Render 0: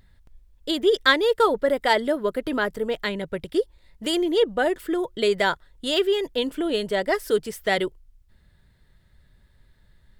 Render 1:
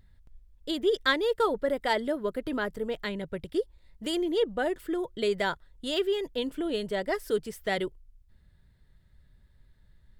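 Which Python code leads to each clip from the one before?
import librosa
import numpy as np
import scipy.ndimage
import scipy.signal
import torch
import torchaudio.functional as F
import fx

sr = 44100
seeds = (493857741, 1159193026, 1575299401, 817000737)

y = fx.low_shelf(x, sr, hz=240.0, db=6.0)
y = y * 10.0 ** (-7.5 / 20.0)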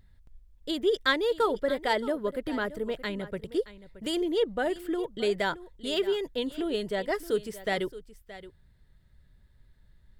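y = x + 10.0 ** (-16.0 / 20.0) * np.pad(x, (int(623 * sr / 1000.0), 0))[:len(x)]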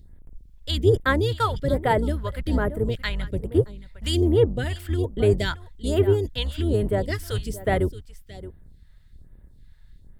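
y = fx.octave_divider(x, sr, octaves=2, level_db=3.0)
y = fx.phaser_stages(y, sr, stages=2, low_hz=280.0, high_hz=5000.0, hz=1.2, feedback_pct=30)
y = y * 10.0 ** (6.0 / 20.0)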